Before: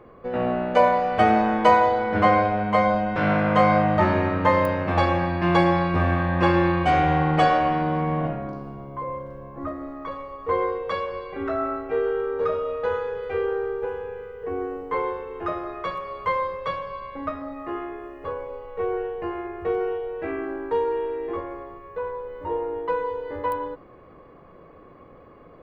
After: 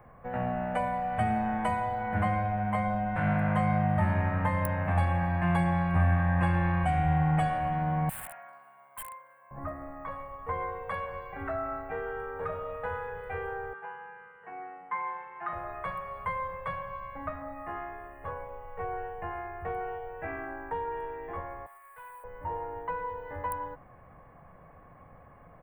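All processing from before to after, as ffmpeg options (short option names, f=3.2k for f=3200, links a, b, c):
-filter_complex "[0:a]asettb=1/sr,asplit=3[a][b][c];[a]atrim=end=8.094[d];[b]atrim=start=8.09:end=9.51,asetpts=PTS-STARTPTS,afade=t=in:d=0.004:c=qsin,afade=t=out:st=1.416:d=0.004:c=qsin,highpass=1.4k,aeval=exprs='(mod(50.1*val(0)+1,2)-1)/50.1':c=same[e];[c]atrim=start=9.506[f];[d][e]acrossfade=d=0.004:c1=hsin:c2=qsin[g];[g][f]acrossfade=d=0.004:c1=qsin:c2=hsin,asettb=1/sr,asplit=3[h][i][j];[h]atrim=end=13.734[k];[i]atrim=start=13.73:end=15.53,asetpts=PTS-STARTPTS,afade=t=in:d=0.004:c=qsin,afade=t=out:st=1.796:d=0.004:c=qsin,highpass=330,lowpass=3.9k,equalizer=f=490:w=1.8:g=-14,aecho=1:1:5.8:0.78,atrim=end_sample=79380[l];[j]atrim=start=15.526[m];[k][l]acrossfade=d=0.004:c1=hsin:c2=qsin[n];[n][m]acrossfade=d=0.004:c1=qsin:c2=hsin,asettb=1/sr,asplit=3[o][p][q];[o]atrim=end=21.664[r];[p]atrim=start=21.66:end=22.24,asetpts=PTS-STARTPTS,afade=t=in:d=0.004:c=qsin,afade=t=out:st=0.576:d=0.004:c=qsin,highpass=1.2k,acrusher=bits=4:mode=log:mix=0:aa=0.000001,aeval=exprs='(tanh(79.4*val(0)+0.1)-tanh(0.1))/79.4':c=same[s];[q]atrim=start=22.236[t];[r][s]acrossfade=d=0.004:c1=hsin:c2=qsin[u];[u][t]acrossfade=d=0.004:c1=qsin:c2=hsin,firequalizer=gain_entry='entry(140,0);entry(360,-17);entry(740,1);entry(1200,-6);entry(1700,0);entry(3900,-19);entry(5900,-25);entry(8500,6)':delay=0.05:min_phase=1,acrossover=split=300|3000[v][w][x];[w]acompressor=threshold=-31dB:ratio=4[y];[v][y][x]amix=inputs=3:normalize=0"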